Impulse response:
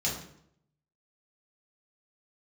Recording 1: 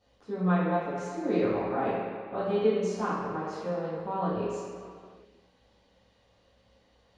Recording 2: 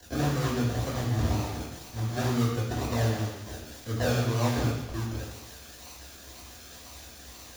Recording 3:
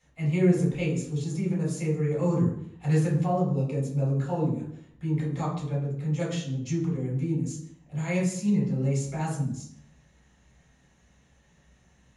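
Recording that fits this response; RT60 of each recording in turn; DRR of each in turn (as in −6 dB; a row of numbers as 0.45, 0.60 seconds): 3; 2.1, 1.0, 0.70 seconds; −12.5, −7.0, −5.0 decibels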